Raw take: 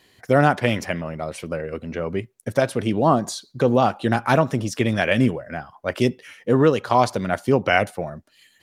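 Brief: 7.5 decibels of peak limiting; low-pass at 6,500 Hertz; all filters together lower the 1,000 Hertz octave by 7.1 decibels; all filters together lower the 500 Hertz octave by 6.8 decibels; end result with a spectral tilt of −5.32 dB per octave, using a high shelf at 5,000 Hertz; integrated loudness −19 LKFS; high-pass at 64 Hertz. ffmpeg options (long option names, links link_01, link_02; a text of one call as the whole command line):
ffmpeg -i in.wav -af "highpass=64,lowpass=6500,equalizer=frequency=500:width_type=o:gain=-6.5,equalizer=frequency=1000:width_type=o:gain=-7.5,highshelf=frequency=5000:gain=4.5,volume=8.5dB,alimiter=limit=-5dB:level=0:latency=1" out.wav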